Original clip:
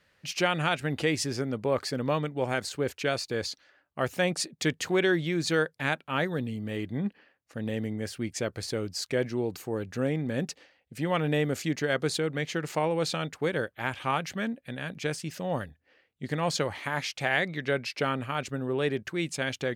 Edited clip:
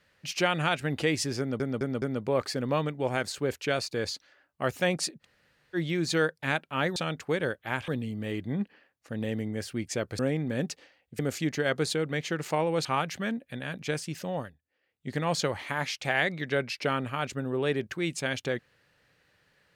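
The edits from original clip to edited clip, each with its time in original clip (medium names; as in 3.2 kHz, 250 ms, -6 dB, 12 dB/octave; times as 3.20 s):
1.39 s: stutter 0.21 s, 4 plays
4.59–5.13 s: room tone, crossfade 0.06 s
8.64–9.98 s: delete
10.98–11.43 s: delete
13.09–14.01 s: move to 6.33 s
15.43–16.25 s: dip -14.5 dB, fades 0.28 s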